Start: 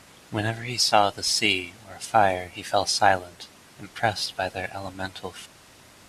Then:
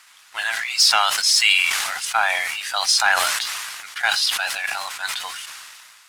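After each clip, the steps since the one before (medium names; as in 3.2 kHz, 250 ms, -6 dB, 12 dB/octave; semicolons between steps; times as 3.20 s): high-pass 1.1 kHz 24 dB/octave; waveshaping leveller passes 1; decay stretcher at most 28 dB/s; trim +3.5 dB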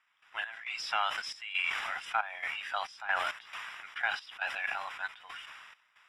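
peak limiter -10 dBFS, peak gain reduction 6 dB; Savitzky-Golay filter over 25 samples; trance gate ".x.xxx.xxx.xx" 68 bpm -12 dB; trim -8 dB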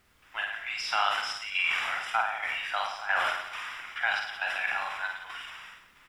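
added noise pink -71 dBFS; on a send: reverse bouncing-ball echo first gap 50 ms, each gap 1.15×, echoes 5; on the sum: trim +2.5 dB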